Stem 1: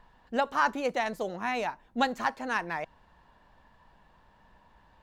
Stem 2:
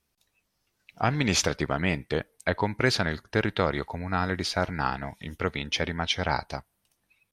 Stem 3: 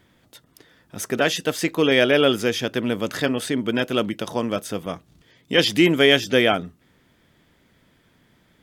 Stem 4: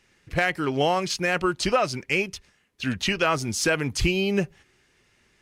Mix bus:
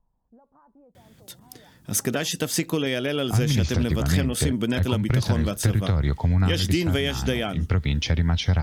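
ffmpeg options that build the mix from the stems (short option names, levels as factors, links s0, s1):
-filter_complex "[0:a]lowpass=f=1000:w=0.5412,lowpass=f=1000:w=1.3066,volume=0.112[s0];[1:a]deesser=0.65,lowpass=6300,acrossover=split=140[s1][s2];[s2]acompressor=threshold=0.0398:ratio=6[s3];[s1][s3]amix=inputs=2:normalize=0,adelay=2300,volume=1.33[s4];[2:a]highpass=f=180:p=1,adelay=950,volume=0.891[s5];[s4][s5]amix=inputs=2:normalize=0,equalizer=f=76:t=o:w=2.3:g=7,acompressor=threshold=0.0631:ratio=6,volume=1[s6];[s0]alimiter=level_in=17.8:limit=0.0631:level=0:latency=1:release=280,volume=0.0562,volume=1[s7];[s6][s7]amix=inputs=2:normalize=0,bass=f=250:g=10,treble=f=4000:g=9"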